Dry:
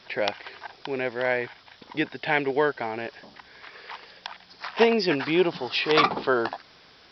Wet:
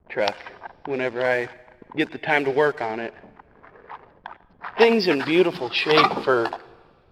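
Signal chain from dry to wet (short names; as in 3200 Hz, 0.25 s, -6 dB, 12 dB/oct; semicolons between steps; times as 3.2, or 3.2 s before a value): bin magnitudes rounded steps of 15 dB; backlash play -41 dBFS; low-pass opened by the level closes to 970 Hz, open at -21.5 dBFS; on a send: reverb, pre-delay 96 ms, DRR 21.5 dB; on the sum: gain +4 dB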